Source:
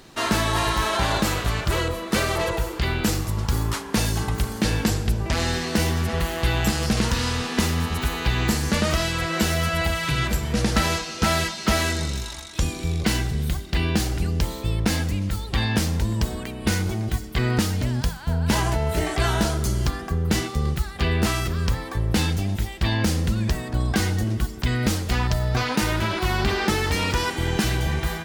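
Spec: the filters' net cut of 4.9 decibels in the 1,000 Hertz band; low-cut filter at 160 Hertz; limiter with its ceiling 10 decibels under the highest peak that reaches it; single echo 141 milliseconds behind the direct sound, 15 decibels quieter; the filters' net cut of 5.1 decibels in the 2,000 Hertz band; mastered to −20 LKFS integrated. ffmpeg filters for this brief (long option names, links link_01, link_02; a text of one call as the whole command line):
ffmpeg -i in.wav -af "highpass=160,equalizer=frequency=1000:width_type=o:gain=-5,equalizer=frequency=2000:width_type=o:gain=-5,alimiter=limit=-19.5dB:level=0:latency=1,aecho=1:1:141:0.178,volume=10dB" out.wav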